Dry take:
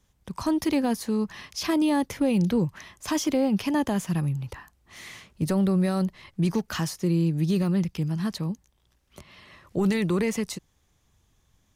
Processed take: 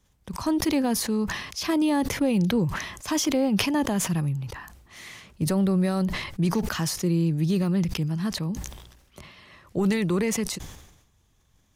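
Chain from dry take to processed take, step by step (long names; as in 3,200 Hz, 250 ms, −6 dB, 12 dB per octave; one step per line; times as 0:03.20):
level that may fall only so fast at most 60 dB per second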